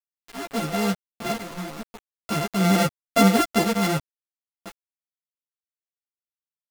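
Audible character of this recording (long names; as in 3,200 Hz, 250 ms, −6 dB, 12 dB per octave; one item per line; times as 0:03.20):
a buzz of ramps at a fixed pitch in blocks of 64 samples
sample-and-hold tremolo 2.2 Hz, depth 100%
a quantiser's noise floor 6 bits, dither none
a shimmering, thickened sound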